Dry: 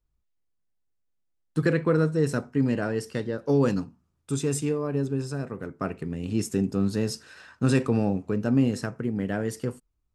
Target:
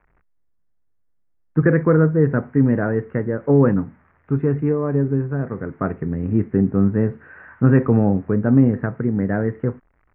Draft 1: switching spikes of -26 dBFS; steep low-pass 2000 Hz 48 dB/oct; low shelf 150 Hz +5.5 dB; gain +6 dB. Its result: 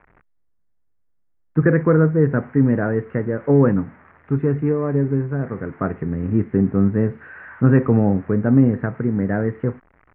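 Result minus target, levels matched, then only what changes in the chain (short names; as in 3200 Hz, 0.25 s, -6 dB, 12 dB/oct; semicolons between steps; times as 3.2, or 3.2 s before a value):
switching spikes: distortion +9 dB
change: switching spikes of -35.5 dBFS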